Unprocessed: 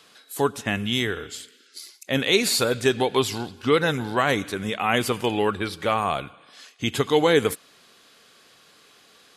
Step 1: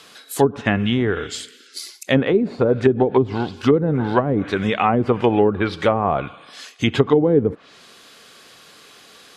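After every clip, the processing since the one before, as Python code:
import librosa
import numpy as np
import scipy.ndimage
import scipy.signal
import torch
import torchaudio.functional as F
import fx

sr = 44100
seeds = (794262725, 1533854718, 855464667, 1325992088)

y = fx.env_lowpass_down(x, sr, base_hz=360.0, full_db=-16.5)
y = F.gain(torch.from_numpy(y), 8.0).numpy()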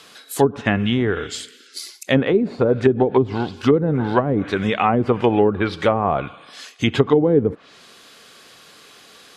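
y = x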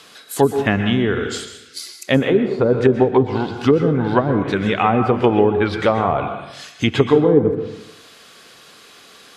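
y = fx.rev_plate(x, sr, seeds[0], rt60_s=0.81, hf_ratio=0.6, predelay_ms=110, drr_db=7.5)
y = F.gain(torch.from_numpy(y), 1.0).numpy()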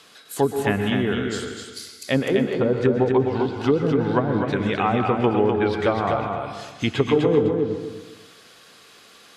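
y = fx.echo_feedback(x, sr, ms=252, feedback_pct=23, wet_db=-5)
y = F.gain(torch.from_numpy(y), -5.5).numpy()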